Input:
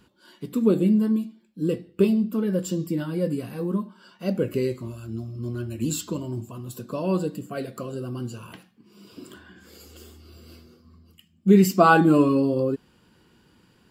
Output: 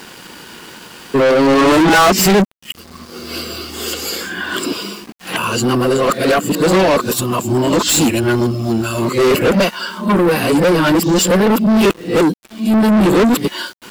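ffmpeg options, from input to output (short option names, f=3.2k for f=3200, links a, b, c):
-filter_complex "[0:a]areverse,asplit=2[a][b];[b]highpass=f=720:p=1,volume=37dB,asoftclip=type=tanh:threshold=-3dB[c];[a][c]amix=inputs=2:normalize=0,lowpass=f=7.7k:p=1,volume=-6dB,aeval=exprs='val(0)*gte(abs(val(0)),0.0211)':c=same,volume=-1dB"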